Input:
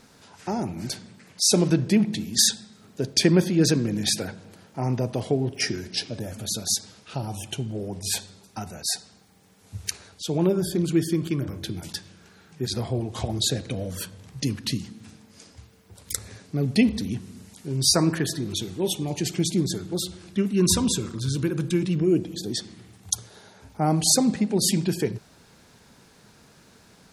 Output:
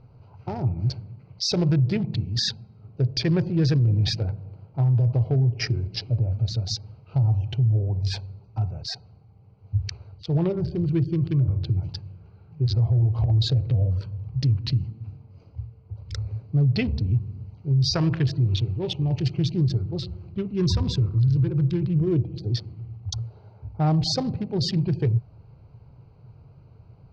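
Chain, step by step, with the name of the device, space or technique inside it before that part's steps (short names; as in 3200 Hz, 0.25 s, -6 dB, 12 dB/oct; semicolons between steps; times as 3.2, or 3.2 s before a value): Wiener smoothing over 25 samples; Chebyshev low-pass 5100 Hz, order 4; car stereo with a boomy subwoofer (resonant low shelf 160 Hz +10 dB, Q 3; limiter -14.5 dBFS, peak gain reduction 10 dB); 17.93–19.56 bell 2700 Hz +6 dB 0.65 oct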